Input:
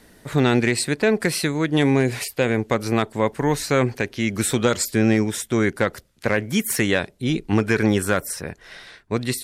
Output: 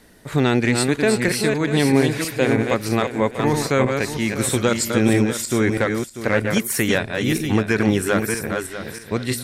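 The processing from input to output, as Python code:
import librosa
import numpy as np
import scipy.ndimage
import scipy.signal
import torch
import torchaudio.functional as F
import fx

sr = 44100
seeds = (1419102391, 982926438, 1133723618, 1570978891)

y = fx.reverse_delay_fb(x, sr, ms=321, feedback_pct=43, wet_db=-4.5)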